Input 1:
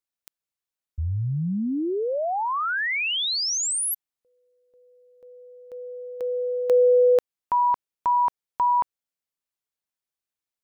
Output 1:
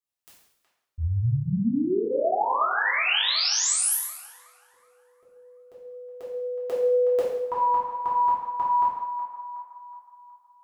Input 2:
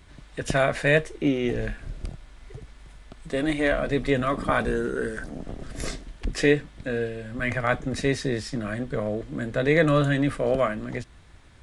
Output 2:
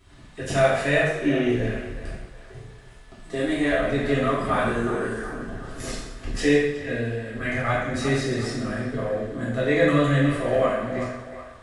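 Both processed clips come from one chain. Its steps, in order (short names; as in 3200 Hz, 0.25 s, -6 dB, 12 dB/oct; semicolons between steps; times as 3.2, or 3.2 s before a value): narrowing echo 0.369 s, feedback 49%, band-pass 1100 Hz, level -9 dB; two-slope reverb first 0.79 s, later 2.3 s, from -27 dB, DRR -8 dB; gain -7.5 dB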